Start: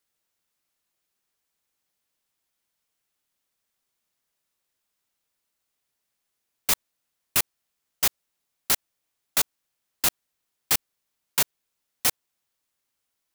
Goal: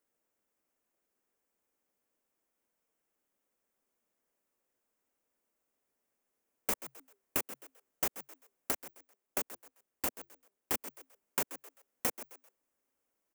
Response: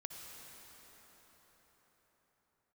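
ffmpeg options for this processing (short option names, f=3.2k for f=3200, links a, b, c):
-filter_complex "[0:a]asplit=4[a][b][c][d];[b]adelay=130,afreqshift=130,volume=-17.5dB[e];[c]adelay=260,afreqshift=260,volume=-28dB[f];[d]adelay=390,afreqshift=390,volume=-38.4dB[g];[a][e][f][g]amix=inputs=4:normalize=0,asettb=1/sr,asplit=3[h][i][j];[h]atrim=end=8.714[k];[i]atrim=start=8.71:end=10.74,asetpts=PTS-STARTPTS,afade=t=in:d=0.004:c=qsin,afade=t=out:st=2.026:d=0.004:c=qsin,tremolo=f=210:d=0.919[l];[j]atrim=start=10.736[m];[k][l]acrossfade=d=0.004:c1=hsin:c2=qsin[n];[n][m]acrossfade=d=0.004:c1=qsin:c2=hsin,equalizer=f=125:t=o:w=1:g=-7,equalizer=f=250:t=o:w=1:g=7,equalizer=f=500:t=o:w=1:g=7,equalizer=f=4k:t=o:w=1:g=-12,acompressor=threshold=-26dB:ratio=6,equalizer=f=12k:t=o:w=0.72:g=-5,volume=-2dB"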